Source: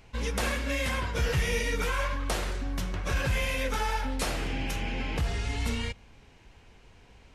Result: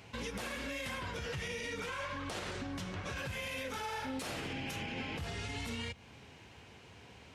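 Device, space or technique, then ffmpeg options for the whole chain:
broadcast voice chain: -filter_complex "[0:a]asettb=1/sr,asplit=3[link_01][link_02][link_03];[link_01]atrim=end=1.174[link_04];[link_02]atrim=start=1.17:end=3.18,asetpts=PTS-STARTPTS,afade=type=in:duration=0.004:curve=qsin,afade=type=out:start_time=2.006:duration=0.004:curve=qsin,lowpass=9100[link_05];[link_03]atrim=start=3.176[link_06];[link_04][link_05]acrossfade=duration=0.004:curve1=hsin:curve2=qsin[link_07];[link_07][link_06]acrossfade=duration=0.004:curve1=qsin:curve2=hsin,asettb=1/sr,asplit=3[link_08][link_09][link_10];[link_08]atrim=end=3.774[link_11];[link_09]atrim=start=3.77:end=4.2,asetpts=PTS-STARTPTS,afade=type=in:duration=0.004:curve=qsin,afade=type=out:start_time=0.426:duration=0.004:curve=qsin,asplit=2[link_12][link_13];[link_13]adelay=38,volume=-3dB[link_14];[link_12][link_14]amix=inputs=2:normalize=0,atrim=end_sample=18963[link_15];[link_10]atrim=start=4.196[link_16];[link_11][link_15]acrossfade=duration=0.004:curve1=hsin:curve2=qsin[link_17];[link_17][link_16]acrossfade=duration=0.004:curve1=qsin:curve2=hsin,highpass=frequency=81:width=0.5412,highpass=frequency=81:width=1.3066,deesser=0.6,acompressor=threshold=-40dB:ratio=3,equalizer=frequency=3200:width_type=o:width=0.77:gain=2,alimiter=level_in=9.5dB:limit=-24dB:level=0:latency=1:release=42,volume=-9.5dB,volume=2.5dB"

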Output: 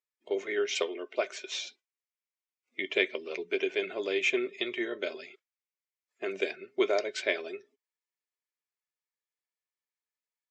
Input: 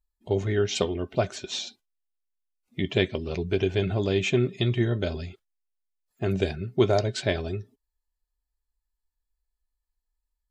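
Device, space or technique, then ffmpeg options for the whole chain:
phone speaker on a table: -filter_complex "[0:a]highpass=frequency=370:width=0.5412,highpass=frequency=370:width=1.3066,equalizer=frequency=800:width_type=q:width=4:gain=-9,equalizer=frequency=2200:width_type=q:width=4:gain=9,equalizer=frequency=4200:width_type=q:width=4:gain=-5,lowpass=frequency=7200:width=0.5412,lowpass=frequency=7200:width=1.3066,asettb=1/sr,asplit=3[link_01][link_02][link_03];[link_01]atrim=end=0.764[link_04];[link_02]atrim=start=0.76:end=1.66,asetpts=PTS-STARTPTS,afade=type=in:duration=0.004:curve=qsin,afade=type=out:start_time=0.896:duration=0.004:curve=qsin,highpass=260[link_05];[link_03]atrim=start=1.656[link_06];[link_04][link_05]acrossfade=duration=0.004:curve1=hsin:curve2=qsin[link_07];[link_07][link_06]acrossfade=duration=0.004:curve1=qsin:curve2=hsin,volume=-2.5dB"

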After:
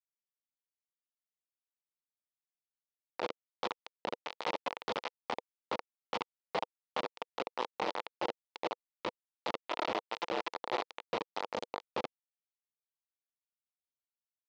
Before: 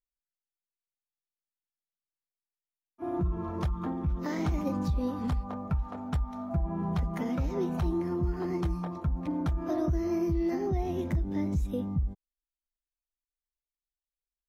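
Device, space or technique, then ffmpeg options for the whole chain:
hand-held game console: -af "acrusher=bits=3:mix=0:aa=0.000001,highpass=490,equalizer=frequency=490:width_type=q:width=4:gain=5,equalizer=frequency=890:width_type=q:width=4:gain=5,equalizer=frequency=1600:width_type=q:width=4:gain=-7,lowpass=frequency=4400:width=0.5412,lowpass=frequency=4400:width=1.3066,volume=-3.5dB"

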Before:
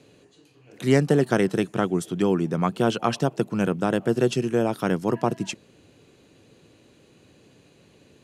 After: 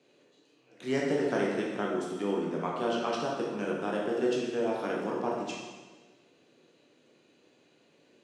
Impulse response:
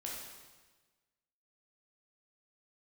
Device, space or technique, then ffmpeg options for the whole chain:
supermarket ceiling speaker: -filter_complex "[0:a]highpass=250,lowpass=6600[link_01];[1:a]atrim=start_sample=2205[link_02];[link_01][link_02]afir=irnorm=-1:irlink=0,volume=-5.5dB"

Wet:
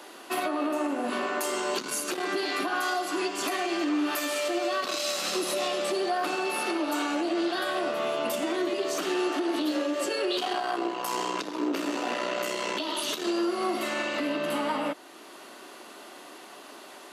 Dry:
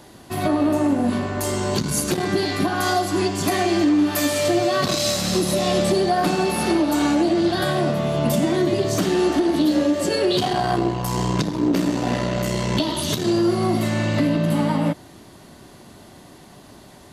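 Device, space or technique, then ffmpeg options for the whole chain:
laptop speaker: -af "highpass=frequency=310:width=0.5412,highpass=frequency=310:width=1.3066,equalizer=frequency=1300:width_type=o:width=0.54:gain=7,equalizer=frequency=2700:width_type=o:width=0.47:gain=6.5,alimiter=limit=-19.5dB:level=0:latency=1:release=477"

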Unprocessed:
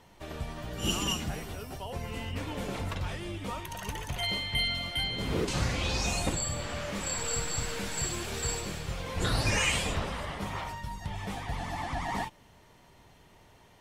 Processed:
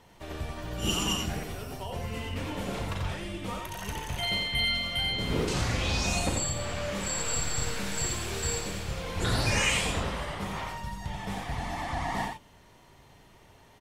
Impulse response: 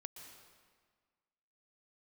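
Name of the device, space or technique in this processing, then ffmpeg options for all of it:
slapback doubling: -filter_complex "[0:a]asplit=3[link_01][link_02][link_03];[link_02]adelay=36,volume=-9dB[link_04];[link_03]adelay=87,volume=-4.5dB[link_05];[link_01][link_04][link_05]amix=inputs=3:normalize=0"

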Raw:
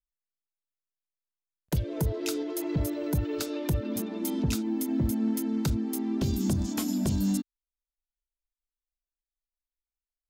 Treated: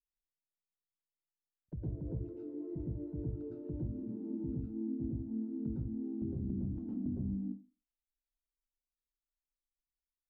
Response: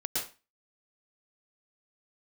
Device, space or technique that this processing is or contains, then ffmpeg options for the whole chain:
television next door: -filter_complex "[0:a]acompressor=threshold=-30dB:ratio=6,lowpass=270[link_01];[1:a]atrim=start_sample=2205[link_02];[link_01][link_02]afir=irnorm=-1:irlink=0,volume=-7dB"

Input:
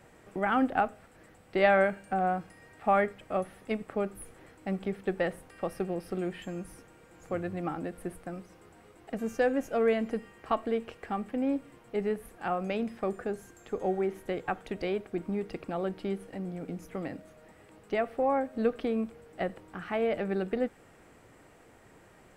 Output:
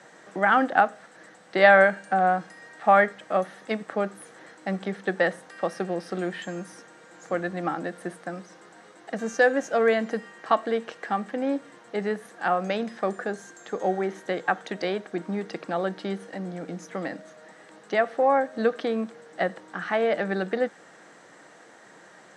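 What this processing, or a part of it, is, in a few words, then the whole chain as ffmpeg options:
television speaker: -af "highpass=frequency=190:width=0.5412,highpass=frequency=190:width=1.3066,equalizer=frequency=250:width_type=q:width=4:gain=-8,equalizer=frequency=400:width_type=q:width=4:gain=-6,equalizer=frequency=1700:width_type=q:width=4:gain=6,equalizer=frequency=2500:width_type=q:width=4:gain=-6,equalizer=frequency=3900:width_type=q:width=4:gain=5,equalizer=frequency=6100:width_type=q:width=4:gain=6,lowpass=frequency=8700:width=0.5412,lowpass=frequency=8700:width=1.3066,volume=7.5dB"

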